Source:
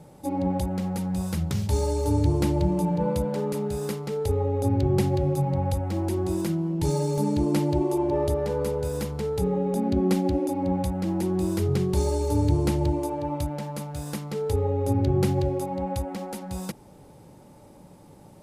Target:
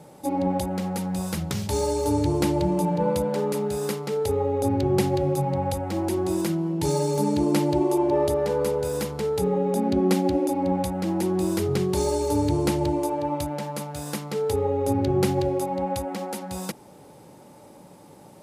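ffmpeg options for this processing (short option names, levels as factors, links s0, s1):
-af "highpass=f=260:p=1,volume=1.68"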